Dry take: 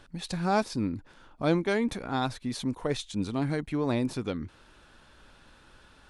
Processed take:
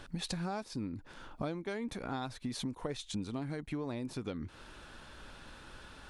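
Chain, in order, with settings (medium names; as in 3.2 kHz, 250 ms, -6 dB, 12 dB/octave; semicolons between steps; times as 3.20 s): compression 12:1, threshold -39 dBFS, peak gain reduction 20.5 dB; trim +4.5 dB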